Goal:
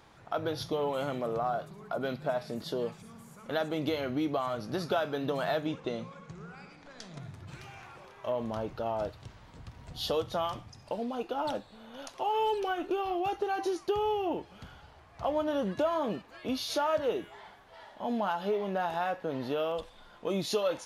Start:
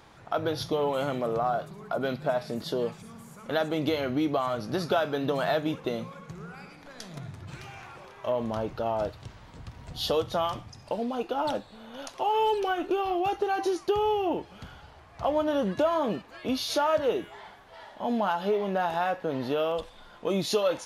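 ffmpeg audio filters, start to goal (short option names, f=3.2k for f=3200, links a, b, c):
-filter_complex "[0:a]asettb=1/sr,asplit=3[a][b][c];[a]atrim=end=5.664[d];[b]atrim=start=5.66:end=7.2,asetpts=PTS-STARTPTS,afade=t=in:d=0.004:c=qsin,afade=t=out:st=1.536:d=0.004:c=qsin,lowpass=f=8.6k:w=0.5412,lowpass=f=8.6k:w=1.3066[e];[c]atrim=start=7.196[f];[d][e]acrossfade=d=0.004:c1=hsin:c2=qsin[g];[g][f]acrossfade=d=0.004:c1=qsin:c2=hsin,volume=-4dB"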